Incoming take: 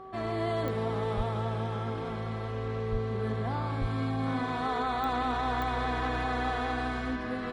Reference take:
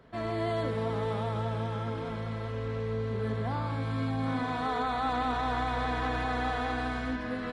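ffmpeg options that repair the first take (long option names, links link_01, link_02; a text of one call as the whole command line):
ffmpeg -i in.wav -filter_complex "[0:a]adeclick=threshold=4,bandreject=frequency=381.3:width_type=h:width=4,bandreject=frequency=762.6:width_type=h:width=4,bandreject=frequency=1143.9:width_type=h:width=4,asplit=3[link_01][link_02][link_03];[link_01]afade=type=out:start_time=1.16:duration=0.02[link_04];[link_02]highpass=frequency=140:width=0.5412,highpass=frequency=140:width=1.3066,afade=type=in:start_time=1.16:duration=0.02,afade=type=out:start_time=1.28:duration=0.02[link_05];[link_03]afade=type=in:start_time=1.28:duration=0.02[link_06];[link_04][link_05][link_06]amix=inputs=3:normalize=0,asplit=3[link_07][link_08][link_09];[link_07]afade=type=out:start_time=2.91:duration=0.02[link_10];[link_08]highpass=frequency=140:width=0.5412,highpass=frequency=140:width=1.3066,afade=type=in:start_time=2.91:duration=0.02,afade=type=out:start_time=3.03:duration=0.02[link_11];[link_09]afade=type=in:start_time=3.03:duration=0.02[link_12];[link_10][link_11][link_12]amix=inputs=3:normalize=0,asplit=3[link_13][link_14][link_15];[link_13]afade=type=out:start_time=3.8:duration=0.02[link_16];[link_14]highpass=frequency=140:width=0.5412,highpass=frequency=140:width=1.3066,afade=type=in:start_time=3.8:duration=0.02,afade=type=out:start_time=3.92:duration=0.02[link_17];[link_15]afade=type=in:start_time=3.92:duration=0.02[link_18];[link_16][link_17][link_18]amix=inputs=3:normalize=0" out.wav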